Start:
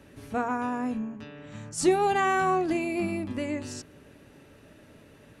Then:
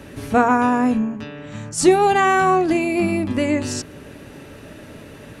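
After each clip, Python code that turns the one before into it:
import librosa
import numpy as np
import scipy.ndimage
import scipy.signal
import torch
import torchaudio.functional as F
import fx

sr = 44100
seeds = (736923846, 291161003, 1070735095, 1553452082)

y = fx.rider(x, sr, range_db=10, speed_s=2.0)
y = y * 10.0 ** (8.5 / 20.0)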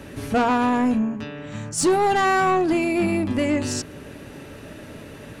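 y = 10.0 ** (-14.0 / 20.0) * np.tanh(x / 10.0 ** (-14.0 / 20.0))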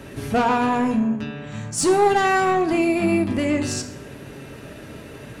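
y = fx.rev_fdn(x, sr, rt60_s=0.82, lf_ratio=0.95, hf_ratio=0.8, size_ms=44.0, drr_db=6.0)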